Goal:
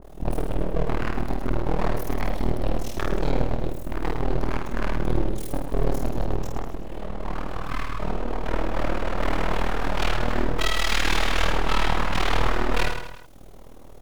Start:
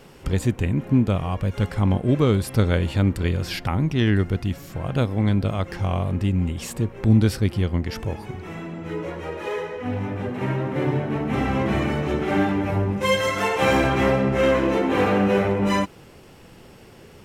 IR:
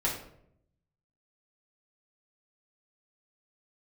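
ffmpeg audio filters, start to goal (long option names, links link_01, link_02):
-filter_complex "[0:a]afwtdn=0.0447,aemphasis=mode=production:type=50kf,bandreject=frequency=72.04:width_type=h:width=4,bandreject=frequency=144.08:width_type=h:width=4,bandreject=frequency=216.12:width_type=h:width=4,bandreject=frequency=288.16:width_type=h:width=4,bandreject=frequency=360.2:width_type=h:width=4,bandreject=frequency=432.24:width_type=h:width=4,acrossover=split=430|2300[link_01][link_02][link_03];[link_01]acompressor=mode=upward:threshold=-33dB:ratio=2.5[link_04];[link_04][link_02][link_03]amix=inputs=3:normalize=0,alimiter=limit=-13dB:level=0:latency=1:release=275,asplit=2[link_05][link_06];[link_06]acompressor=threshold=-32dB:ratio=6,volume=0dB[link_07];[link_05][link_07]amix=inputs=2:normalize=0,asetrate=54243,aresample=44100,aeval=exprs='abs(val(0))':channel_layout=same,tremolo=f=39:d=1,aecho=1:1:50|110|182|268.4|372.1:0.631|0.398|0.251|0.158|0.1,adynamicequalizer=threshold=0.0158:dfrequency=1700:dqfactor=0.7:tfrequency=1700:tqfactor=0.7:attack=5:release=100:ratio=0.375:range=2:mode=boostabove:tftype=highshelf"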